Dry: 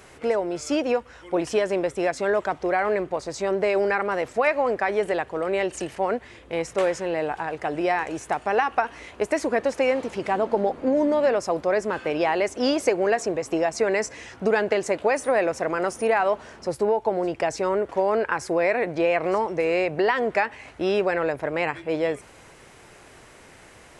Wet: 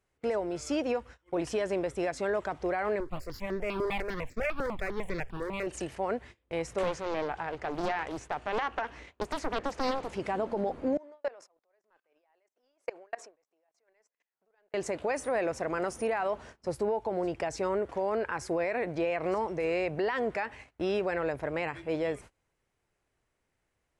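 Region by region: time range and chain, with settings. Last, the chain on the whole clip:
3.00–5.67 s: comb filter that takes the minimum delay 0.41 ms + stepped phaser 10 Hz 720–3000 Hz
6.83–10.09 s: low-pass 7 kHz + loudspeaker Doppler distortion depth 0.76 ms
10.97–14.74 s: high-pass 600 Hz + treble shelf 2.6 kHz -7.5 dB + level held to a coarse grid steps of 22 dB
whole clip: gate -40 dBFS, range -26 dB; bass shelf 93 Hz +11.5 dB; peak limiter -15 dBFS; trim -6.5 dB

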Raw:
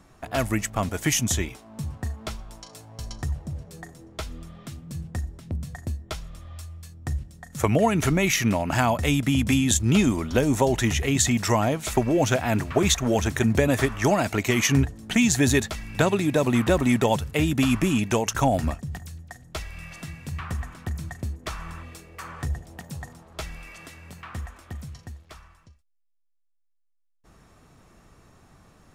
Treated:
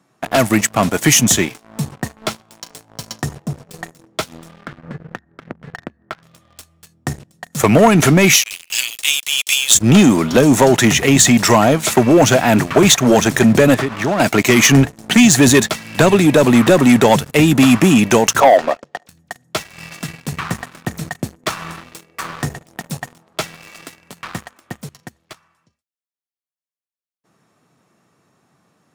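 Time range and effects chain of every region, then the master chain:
4.62–6.23 s: resonant low-pass 1.6 kHz, resonance Q 3.2 + compression 10:1, threshold -34 dBFS
8.34–9.75 s: steep high-pass 2.6 kHz + waveshaping leveller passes 1
13.74–14.20 s: low-pass 2.3 kHz 6 dB/octave + compression 4:1, threshold -26 dBFS + hard clipper -25.5 dBFS
18.40–19.09 s: resonant high-pass 520 Hz, resonance Q 2.4 + distance through air 160 m
whole clip: high-pass 130 Hz 24 dB/octave; waveshaping leveller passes 3; trim +2 dB

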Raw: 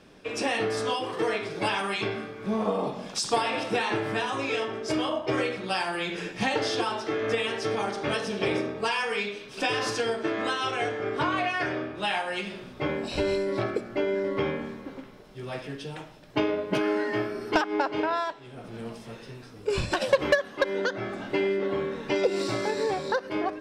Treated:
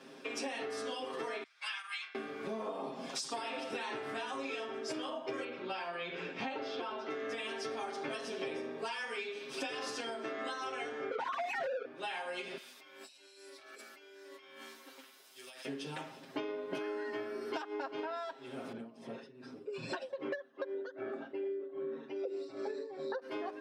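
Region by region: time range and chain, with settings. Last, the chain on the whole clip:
1.43–2.15 s: high-pass 1.3 kHz 24 dB/octave + treble shelf 7.4 kHz -6.5 dB + upward expansion 2.5:1, over -42 dBFS
5.44–7.10 s: low-pass 3.2 kHz + band-stop 1.8 kHz, Q 10
11.11–11.85 s: formants replaced by sine waves + peaking EQ 510 Hz +11 dB 0.72 oct + overdrive pedal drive 24 dB, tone 1.8 kHz, clips at -11 dBFS
12.57–15.65 s: differentiator + compressor with a negative ratio -55 dBFS
18.72–23.22 s: resonances exaggerated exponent 1.5 + tremolo 2.5 Hz, depth 84%
whole clip: high-pass 190 Hz 24 dB/octave; comb 7.5 ms, depth 97%; compression 5:1, threshold -36 dBFS; trim -2 dB

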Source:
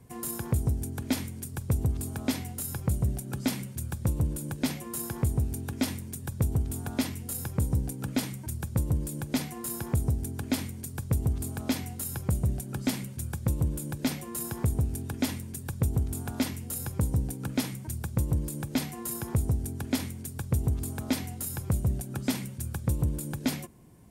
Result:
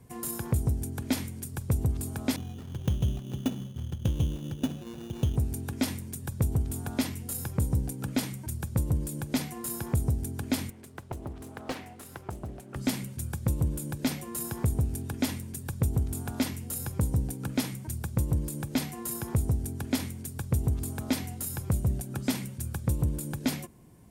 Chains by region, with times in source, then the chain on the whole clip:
2.36–5.36 s: median filter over 41 samples + sample-rate reducer 3.2 kHz + band-stop 2.1 kHz, Q 14
10.70–12.76 s: tone controls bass -13 dB, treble -13 dB + loudspeaker Doppler distortion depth 0.95 ms
whole clip: none

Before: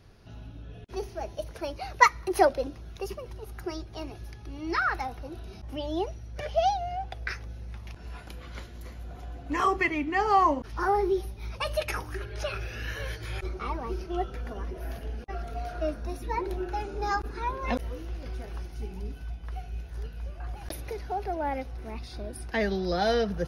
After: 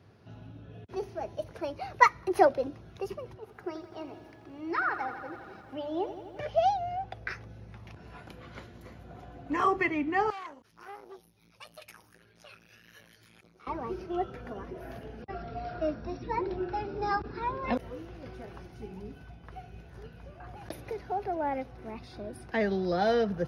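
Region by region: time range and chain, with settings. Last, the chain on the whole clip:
3.34–6.40 s: high-pass 280 Hz 6 dB/octave + treble shelf 4.3 kHz -10 dB + bit-crushed delay 84 ms, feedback 80%, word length 10-bit, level -12 dB
10.30–13.67 s: pre-emphasis filter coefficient 0.9 + transformer saturation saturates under 3.7 kHz
15.22–17.73 s: brick-wall FIR low-pass 5.8 kHz + tone controls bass +4 dB, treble +5 dB
whole clip: high-pass 87 Hz 24 dB/octave; treble shelf 3.4 kHz -11 dB

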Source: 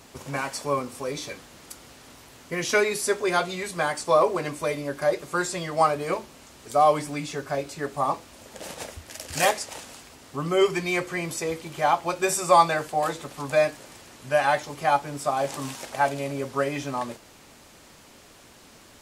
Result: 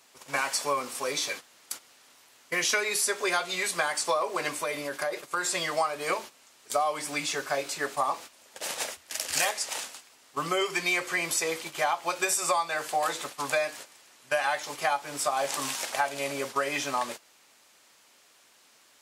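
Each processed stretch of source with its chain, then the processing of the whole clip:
4.55–5.55 s: dynamic bell 5.9 kHz, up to -4 dB, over -44 dBFS, Q 0.77 + compression 5:1, threshold -27 dBFS
whole clip: high-pass 1.2 kHz 6 dB/octave; gate -44 dBFS, range -13 dB; compression 12:1, threshold -30 dBFS; trim +7 dB

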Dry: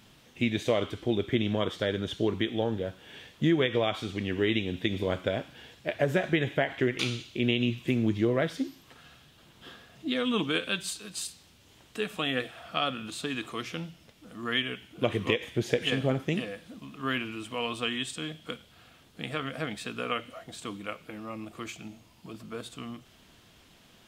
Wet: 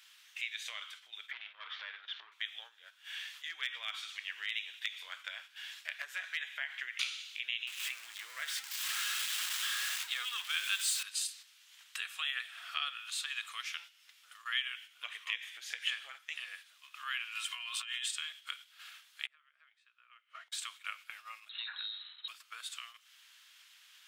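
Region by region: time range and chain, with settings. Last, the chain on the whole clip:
1.31–2.32 s: waveshaping leveller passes 3 + compression 5:1, threshold -28 dBFS + Gaussian low-pass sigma 2.8 samples
3.44–6.40 s: high-pass 190 Hz 6 dB/octave + hard clipper -17 dBFS
7.67–11.03 s: jump at every zero crossing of -30.5 dBFS + peaking EQ 7.8 kHz +4 dB 0.22 oct
17.35–18.08 s: Bessel high-pass 860 Hz + comb 2.9 ms, depth 58% + compressor with a negative ratio -41 dBFS
19.26–20.52 s: peaking EQ 760 Hz -5 dB 0.23 oct + inverted gate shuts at -33 dBFS, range -24 dB + band-pass filter 830 Hz, Q 0.51
21.49–22.28 s: compression 4:1, threshold -42 dBFS + frequency inversion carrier 4 kHz
whole clip: compression 2:1, threshold -48 dBFS; high-pass 1.4 kHz 24 dB/octave; gate -59 dBFS, range -8 dB; trim +8.5 dB

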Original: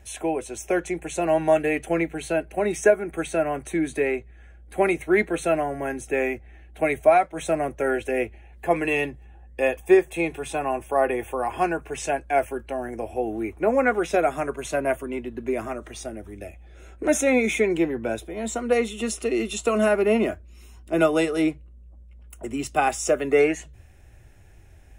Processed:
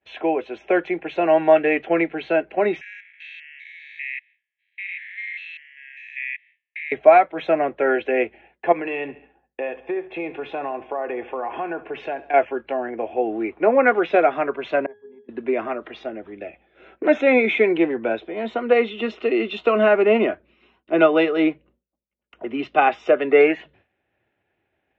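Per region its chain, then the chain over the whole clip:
2.81–6.92 s: spectrogram pixelated in time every 200 ms + steep high-pass 1.8 kHz 96 dB/octave
8.72–12.34 s: treble shelf 3 kHz -8 dB + compression 5:1, threshold -28 dBFS + feedback delay 69 ms, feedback 54%, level -17 dB
14.86–15.29 s: hum notches 60/120/180/240/300 Hz + transient shaper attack +6 dB, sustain -4 dB + pitch-class resonator G#, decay 0.41 s
whole clip: high-pass 270 Hz 12 dB/octave; expander -50 dBFS; steep low-pass 3.5 kHz 36 dB/octave; trim +5 dB

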